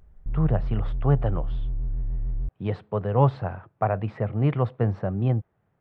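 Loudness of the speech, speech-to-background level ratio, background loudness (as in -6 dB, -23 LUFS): -26.0 LUFS, 6.5 dB, -32.5 LUFS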